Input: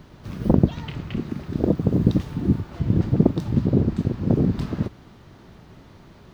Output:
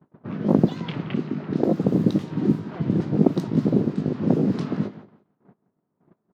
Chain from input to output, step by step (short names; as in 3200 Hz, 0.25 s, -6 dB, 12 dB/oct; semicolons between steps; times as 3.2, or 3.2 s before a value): repeated pitch sweeps +1.5 st, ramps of 0.925 s; HPF 150 Hz 24 dB/oct; gate -46 dBFS, range -32 dB; in parallel at +2 dB: compressor 10:1, threshold -31 dBFS, peak gain reduction 19.5 dB; on the sum: low-pass opened by the level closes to 1200 Hz, open at -16.5 dBFS; on a send: feedback echo 0.173 s, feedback 20%, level -17 dB; on the sum: mismatched tape noise reduction decoder only